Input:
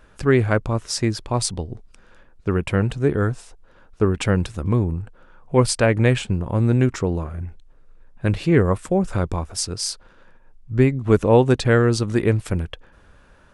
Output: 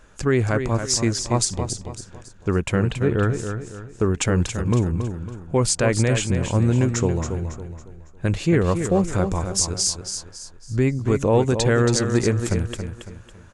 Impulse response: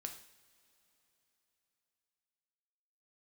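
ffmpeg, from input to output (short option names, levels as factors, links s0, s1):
-filter_complex "[0:a]equalizer=f=6800:t=o:w=0.49:g=11.5,alimiter=limit=0.355:level=0:latency=1:release=83,asettb=1/sr,asplit=3[s0][s1][s2];[s0]atrim=end=2.914[s3];[s1]atrim=start=2.91:end=3.32,asetpts=PTS-STARTPTS,afade=t=in:d=0.004:c=qsin,afade=t=out:st=0.406:d=0.004:c=qsin,highshelf=f=4900:t=q:w=1.5:g=-11[s4];[s2]atrim=start=3.316[s5];[s3][s4]acrossfade=d=0.004:c1=hsin:c2=qsin[s6];[s6][s5]acrossfade=d=0.004:c1=qsin:c2=hsin,aecho=1:1:277|554|831|1108:0.398|0.151|0.0575|0.0218"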